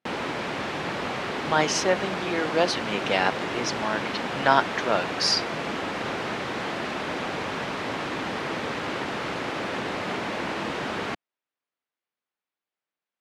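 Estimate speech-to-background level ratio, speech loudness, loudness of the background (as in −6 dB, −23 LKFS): 4.5 dB, −25.5 LKFS, −30.0 LKFS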